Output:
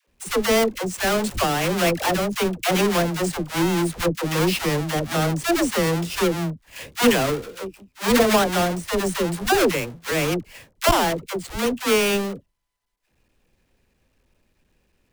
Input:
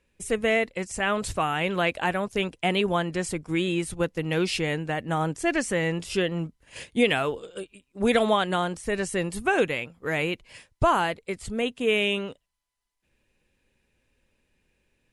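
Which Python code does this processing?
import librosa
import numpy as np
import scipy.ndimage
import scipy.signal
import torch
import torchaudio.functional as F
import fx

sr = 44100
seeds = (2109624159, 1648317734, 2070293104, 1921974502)

y = fx.halfwave_hold(x, sr)
y = fx.dispersion(y, sr, late='lows', ms=77.0, hz=530.0)
y = fx.transformer_sat(y, sr, knee_hz=140.0)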